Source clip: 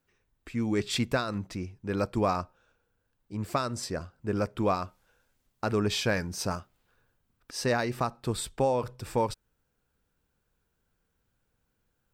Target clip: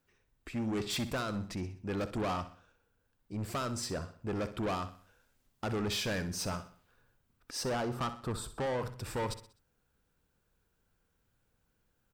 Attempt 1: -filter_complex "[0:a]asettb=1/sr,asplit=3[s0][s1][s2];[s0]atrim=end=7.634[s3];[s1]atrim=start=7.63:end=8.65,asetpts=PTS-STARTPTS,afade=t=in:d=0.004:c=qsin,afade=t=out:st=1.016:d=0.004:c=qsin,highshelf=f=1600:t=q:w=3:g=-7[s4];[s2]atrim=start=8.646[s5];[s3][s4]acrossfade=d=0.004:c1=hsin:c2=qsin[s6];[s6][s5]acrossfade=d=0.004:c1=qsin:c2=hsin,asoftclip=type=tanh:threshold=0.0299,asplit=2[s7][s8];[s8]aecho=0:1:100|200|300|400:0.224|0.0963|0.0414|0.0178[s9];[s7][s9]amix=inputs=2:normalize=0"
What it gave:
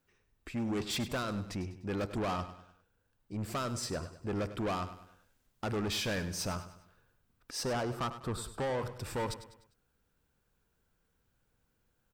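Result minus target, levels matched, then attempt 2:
echo 37 ms late
-filter_complex "[0:a]asettb=1/sr,asplit=3[s0][s1][s2];[s0]atrim=end=7.634[s3];[s1]atrim=start=7.63:end=8.65,asetpts=PTS-STARTPTS,afade=t=in:d=0.004:c=qsin,afade=t=out:st=1.016:d=0.004:c=qsin,highshelf=f=1600:t=q:w=3:g=-7[s4];[s2]atrim=start=8.646[s5];[s3][s4]acrossfade=d=0.004:c1=hsin:c2=qsin[s6];[s6][s5]acrossfade=d=0.004:c1=qsin:c2=hsin,asoftclip=type=tanh:threshold=0.0299,asplit=2[s7][s8];[s8]aecho=0:1:63|126|189|252:0.224|0.0963|0.0414|0.0178[s9];[s7][s9]amix=inputs=2:normalize=0"

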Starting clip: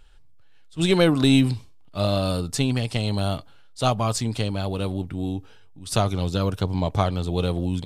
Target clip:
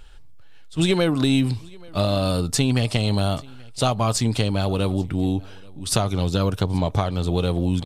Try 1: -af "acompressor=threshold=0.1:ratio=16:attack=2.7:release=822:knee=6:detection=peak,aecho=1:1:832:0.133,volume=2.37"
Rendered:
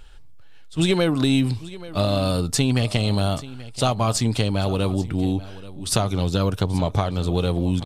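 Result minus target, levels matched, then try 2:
echo-to-direct +7.5 dB
-af "acompressor=threshold=0.1:ratio=16:attack=2.7:release=822:knee=6:detection=peak,aecho=1:1:832:0.0562,volume=2.37"

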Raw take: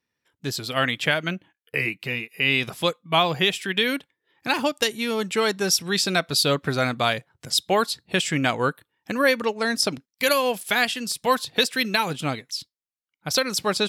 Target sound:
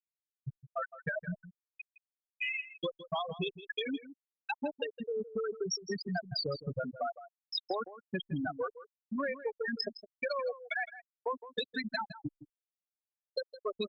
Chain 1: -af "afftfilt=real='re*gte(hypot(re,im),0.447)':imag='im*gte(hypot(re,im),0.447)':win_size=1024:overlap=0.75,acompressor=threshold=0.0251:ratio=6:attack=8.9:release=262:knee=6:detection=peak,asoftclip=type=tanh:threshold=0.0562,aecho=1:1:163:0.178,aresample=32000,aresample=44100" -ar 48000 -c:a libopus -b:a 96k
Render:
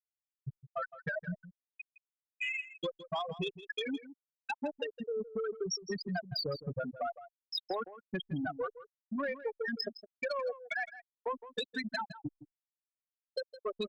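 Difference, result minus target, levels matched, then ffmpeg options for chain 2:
saturation: distortion +17 dB
-af "afftfilt=real='re*gte(hypot(re,im),0.447)':imag='im*gte(hypot(re,im),0.447)':win_size=1024:overlap=0.75,acompressor=threshold=0.0251:ratio=6:attack=8.9:release=262:knee=6:detection=peak,asoftclip=type=tanh:threshold=0.168,aecho=1:1:163:0.178,aresample=32000,aresample=44100" -ar 48000 -c:a libopus -b:a 96k

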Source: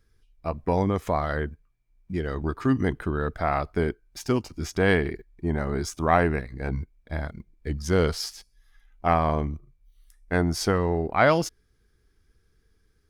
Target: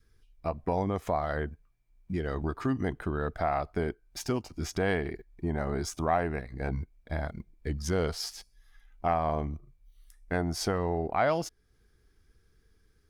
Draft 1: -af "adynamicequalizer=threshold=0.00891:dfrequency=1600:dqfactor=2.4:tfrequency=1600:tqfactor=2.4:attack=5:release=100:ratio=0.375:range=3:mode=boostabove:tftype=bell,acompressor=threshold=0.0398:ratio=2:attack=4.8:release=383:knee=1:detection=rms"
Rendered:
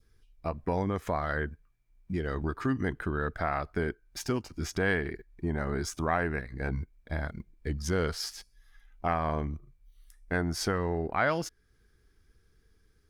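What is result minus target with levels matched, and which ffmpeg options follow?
2 kHz band +4.5 dB
-af "adynamicequalizer=threshold=0.00891:dfrequency=710:dqfactor=2.4:tfrequency=710:tqfactor=2.4:attack=5:release=100:ratio=0.375:range=3:mode=boostabove:tftype=bell,acompressor=threshold=0.0398:ratio=2:attack=4.8:release=383:knee=1:detection=rms"

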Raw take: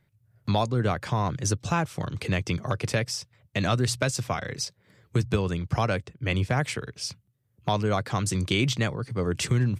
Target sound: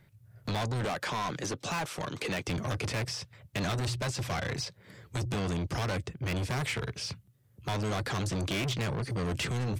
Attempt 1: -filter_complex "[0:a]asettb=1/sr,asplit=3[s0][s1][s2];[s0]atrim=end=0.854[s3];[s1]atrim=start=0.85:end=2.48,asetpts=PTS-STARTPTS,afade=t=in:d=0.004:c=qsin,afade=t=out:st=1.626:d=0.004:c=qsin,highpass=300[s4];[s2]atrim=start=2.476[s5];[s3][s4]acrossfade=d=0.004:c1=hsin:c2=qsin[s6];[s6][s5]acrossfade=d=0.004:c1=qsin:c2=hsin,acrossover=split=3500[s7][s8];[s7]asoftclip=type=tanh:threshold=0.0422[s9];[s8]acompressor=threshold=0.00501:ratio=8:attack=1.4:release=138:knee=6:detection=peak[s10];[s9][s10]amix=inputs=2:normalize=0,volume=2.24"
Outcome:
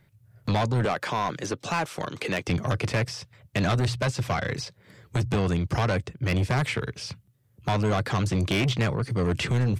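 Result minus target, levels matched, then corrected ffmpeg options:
saturation: distortion -5 dB
-filter_complex "[0:a]asettb=1/sr,asplit=3[s0][s1][s2];[s0]atrim=end=0.854[s3];[s1]atrim=start=0.85:end=2.48,asetpts=PTS-STARTPTS,afade=t=in:d=0.004:c=qsin,afade=t=out:st=1.626:d=0.004:c=qsin,highpass=300[s4];[s2]atrim=start=2.476[s5];[s3][s4]acrossfade=d=0.004:c1=hsin:c2=qsin[s6];[s6][s5]acrossfade=d=0.004:c1=qsin:c2=hsin,acrossover=split=3500[s7][s8];[s7]asoftclip=type=tanh:threshold=0.0141[s9];[s8]acompressor=threshold=0.00501:ratio=8:attack=1.4:release=138:knee=6:detection=peak[s10];[s9][s10]amix=inputs=2:normalize=0,volume=2.24"

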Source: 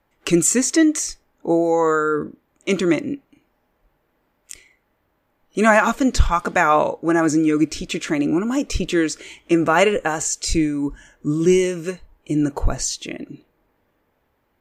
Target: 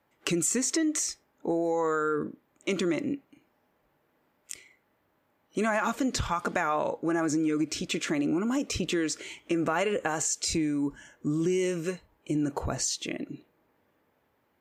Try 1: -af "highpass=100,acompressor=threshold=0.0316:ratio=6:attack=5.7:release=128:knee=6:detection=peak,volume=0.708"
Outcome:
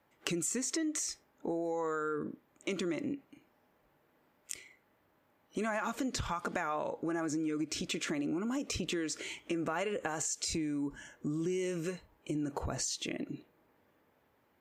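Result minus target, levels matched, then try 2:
compression: peak gain reduction +7.5 dB
-af "highpass=100,acompressor=threshold=0.0891:ratio=6:attack=5.7:release=128:knee=6:detection=peak,volume=0.708"

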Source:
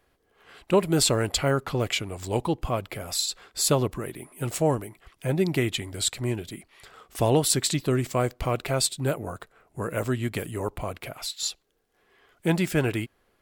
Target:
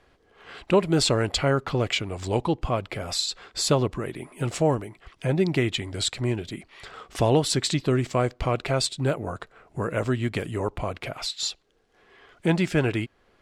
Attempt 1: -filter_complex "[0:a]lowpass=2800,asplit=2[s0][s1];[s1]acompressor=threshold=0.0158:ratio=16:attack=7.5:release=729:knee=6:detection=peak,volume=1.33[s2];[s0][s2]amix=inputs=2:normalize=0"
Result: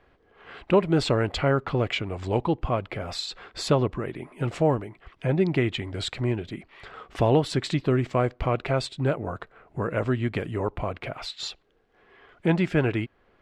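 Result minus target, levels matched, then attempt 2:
8 kHz band -10.5 dB
-filter_complex "[0:a]lowpass=6100,asplit=2[s0][s1];[s1]acompressor=threshold=0.0158:ratio=16:attack=7.5:release=729:knee=6:detection=peak,volume=1.33[s2];[s0][s2]amix=inputs=2:normalize=0"

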